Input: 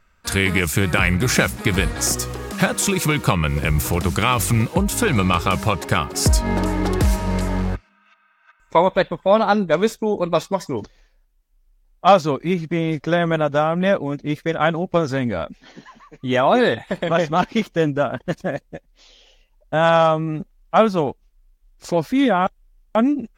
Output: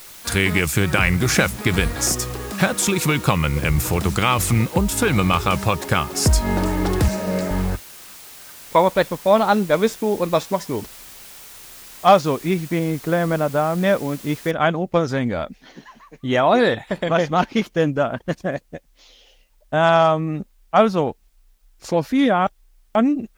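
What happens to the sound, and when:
7.08–7.51 speaker cabinet 180–8100 Hz, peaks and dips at 200 Hz +4 dB, 560 Hz +10 dB, 970 Hz -7 dB, 3200 Hz -6 dB
12.79–13.84 air absorption 400 m
14.51 noise floor step -41 dB -70 dB

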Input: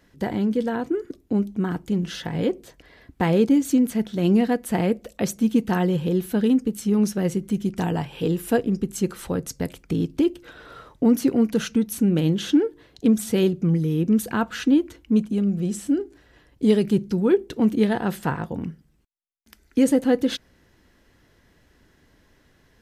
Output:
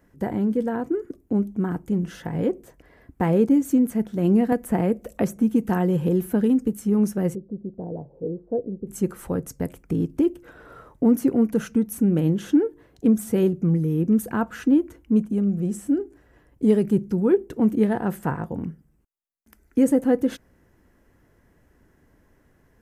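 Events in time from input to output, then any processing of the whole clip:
4.52–6.73 three-band squash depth 70%
7.35–8.87 ladder low-pass 630 Hz, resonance 55%
whole clip: bell 3900 Hz -15 dB 1.4 oct

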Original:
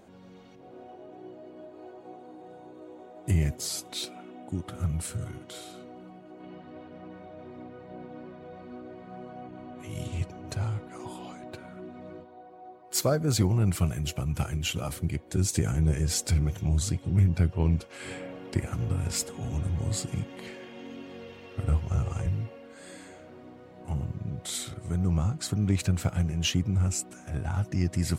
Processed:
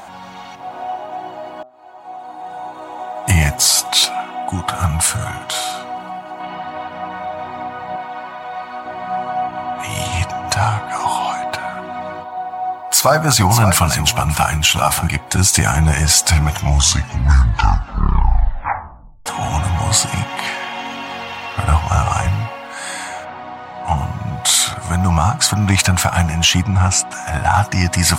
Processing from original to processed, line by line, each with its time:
1.63–2.88 fade in
7.96–8.86 low shelf 370 Hz -11.5 dB
11.79–15.08 echo 0.576 s -13 dB
16.48 tape stop 2.78 s
23.24–23.96 LPF 3600 Hz -> 7500 Hz
26.63–27.14 air absorption 67 m
whole clip: resonant low shelf 600 Hz -11 dB, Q 3; de-hum 126.2 Hz, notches 11; maximiser +23 dB; gain -1 dB

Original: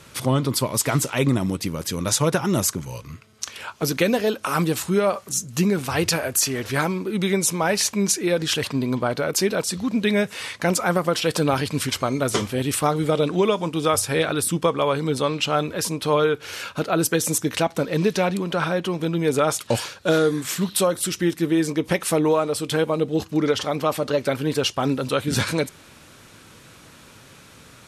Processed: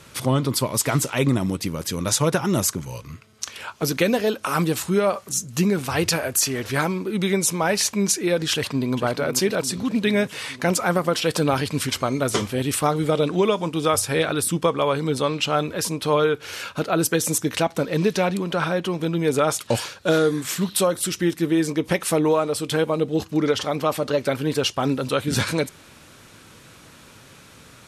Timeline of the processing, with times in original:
8.53–8.95 echo throw 0.44 s, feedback 70%, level -10.5 dB

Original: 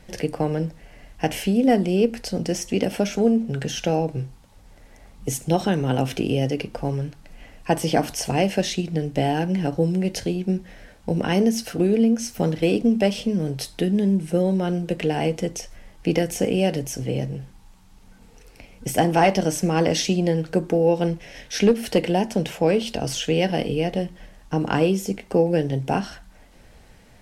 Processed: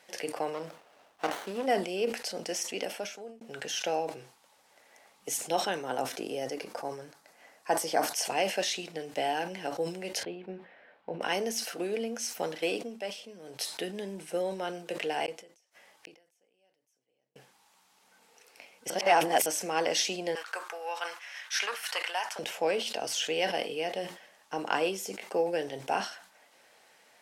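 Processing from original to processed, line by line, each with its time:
0.53–1.66 running maximum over 17 samples
2.63–3.41 fade out
5.82–8.13 bell 2800 Hz -9 dB 0.67 oct
10.23–11.21 air absorption 460 m
12.74–13.6 dip -9 dB, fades 0.18 s
15.26–17.36 flipped gate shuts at -27 dBFS, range -41 dB
18.9–19.46 reverse
20.35–22.39 resonant high-pass 1200 Hz, resonance Q 2.7
whole clip: HPF 610 Hz 12 dB/oct; sustainer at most 110 dB/s; gain -3.5 dB

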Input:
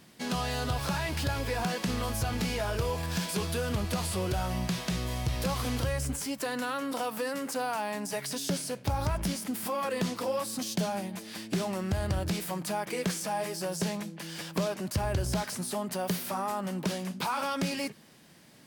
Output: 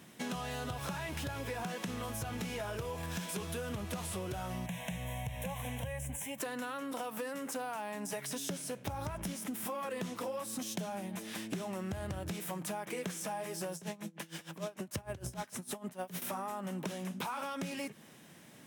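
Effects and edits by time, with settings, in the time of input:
4.66–6.38 fixed phaser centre 1300 Hz, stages 6
13.75–16.22 dB-linear tremolo 6.6 Hz, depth 22 dB
whole clip: HPF 85 Hz; bell 4600 Hz -10.5 dB 0.26 oct; compressor, threshold -37 dBFS; gain +1 dB

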